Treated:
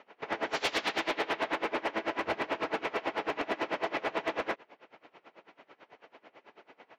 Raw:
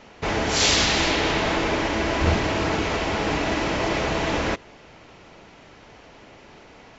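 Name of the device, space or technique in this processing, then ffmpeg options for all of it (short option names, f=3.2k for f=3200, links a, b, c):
helicopter radio: -af "highpass=370,lowpass=2.7k,aeval=exprs='val(0)*pow(10,-23*(0.5-0.5*cos(2*PI*9.1*n/s))/20)':c=same,asoftclip=type=hard:threshold=-21.5dB,volume=-1.5dB"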